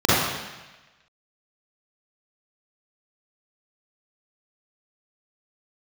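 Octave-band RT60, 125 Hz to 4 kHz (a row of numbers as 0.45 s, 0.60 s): 1.1 s, 1.1 s, 1.1 s, 1.1 s, 1.3 s, 1.2 s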